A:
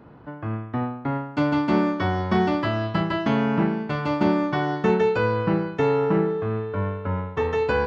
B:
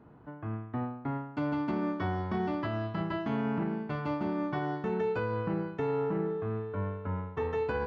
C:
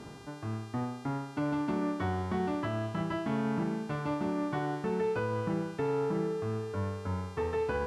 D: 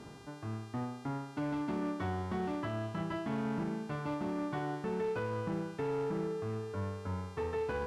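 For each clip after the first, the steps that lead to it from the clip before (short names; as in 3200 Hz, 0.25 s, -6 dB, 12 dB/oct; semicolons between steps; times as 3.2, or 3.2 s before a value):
high shelf 2700 Hz -9 dB; notch 540 Hz, Q 12; limiter -15.5 dBFS, peak gain reduction 6.5 dB; gain -7.5 dB
reverse; upward compressor, threshold -35 dBFS; reverse; buzz 400 Hz, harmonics 31, -53 dBFS -3 dB/oct; air absorption 57 m
overloaded stage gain 26 dB; gain -3.5 dB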